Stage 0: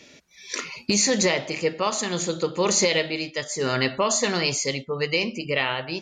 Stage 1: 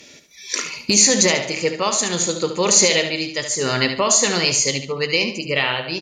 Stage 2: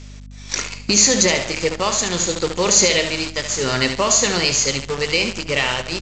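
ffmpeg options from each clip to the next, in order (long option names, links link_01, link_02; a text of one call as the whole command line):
ffmpeg -i in.wav -filter_complex "[0:a]aemphasis=mode=production:type=cd,asplit=2[link_01][link_02];[link_02]aecho=0:1:72|144|216|288:0.355|0.124|0.0435|0.0152[link_03];[link_01][link_03]amix=inputs=2:normalize=0,volume=3dB" out.wav
ffmpeg -i in.wav -af "aresample=16000,acrusher=bits=5:dc=4:mix=0:aa=0.000001,aresample=44100,aeval=exprs='val(0)+0.0158*(sin(2*PI*50*n/s)+sin(2*PI*2*50*n/s)/2+sin(2*PI*3*50*n/s)/3+sin(2*PI*4*50*n/s)/4+sin(2*PI*5*50*n/s)/5)':channel_layout=same" out.wav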